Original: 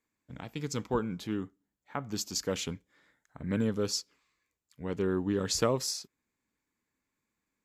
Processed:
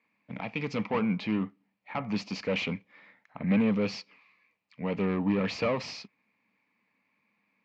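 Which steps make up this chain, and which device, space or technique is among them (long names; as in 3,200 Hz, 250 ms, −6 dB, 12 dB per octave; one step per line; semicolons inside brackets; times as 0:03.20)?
overdrive pedal into a guitar cabinet (mid-hump overdrive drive 26 dB, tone 2,500 Hz, clips at −12 dBFS; loudspeaker in its box 88–4,200 Hz, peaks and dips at 110 Hz +5 dB, 200 Hz +10 dB, 370 Hz −9 dB, 1,500 Hz −10 dB, 2,400 Hz +8 dB, 3,500 Hz −7 dB)
level −5.5 dB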